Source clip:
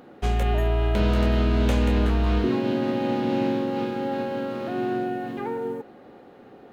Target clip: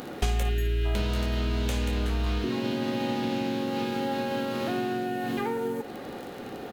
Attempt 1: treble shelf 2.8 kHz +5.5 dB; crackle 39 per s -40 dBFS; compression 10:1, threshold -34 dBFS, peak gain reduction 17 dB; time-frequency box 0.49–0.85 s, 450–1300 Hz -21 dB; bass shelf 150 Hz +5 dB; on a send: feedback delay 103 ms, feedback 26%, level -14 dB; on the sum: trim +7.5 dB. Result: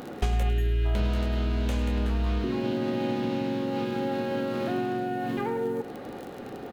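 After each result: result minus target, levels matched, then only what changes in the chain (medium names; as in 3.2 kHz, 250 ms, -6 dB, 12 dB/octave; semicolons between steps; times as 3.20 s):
echo 47 ms late; 4 kHz band -5.5 dB
change: feedback delay 56 ms, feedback 26%, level -14 dB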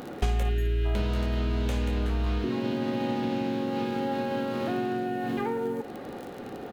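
4 kHz band -5.0 dB
change: treble shelf 2.8 kHz +14 dB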